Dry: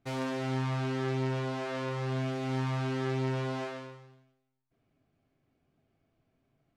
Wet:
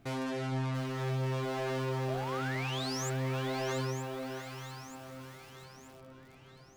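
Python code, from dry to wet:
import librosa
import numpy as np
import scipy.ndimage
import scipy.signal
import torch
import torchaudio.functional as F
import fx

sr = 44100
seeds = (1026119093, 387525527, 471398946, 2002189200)

p1 = fx.dereverb_blind(x, sr, rt60_s=0.58)
p2 = fx.over_compress(p1, sr, threshold_db=-46.0, ratio=-1.0)
p3 = p1 + (p2 * 10.0 ** (1.5 / 20.0))
p4 = fx.spec_paint(p3, sr, seeds[0], shape='rise', start_s=2.08, length_s=1.02, low_hz=590.0, high_hz=7600.0, level_db=-37.0)
p5 = 10.0 ** (-30.5 / 20.0) * np.tanh(p4 / 10.0 ** (-30.5 / 20.0))
p6 = p5 + fx.echo_alternate(p5, sr, ms=464, hz=1100.0, feedback_pct=72, wet_db=-7.0, dry=0)
y = fx.echo_crushed(p6, sr, ms=688, feedback_pct=35, bits=8, wet_db=-8)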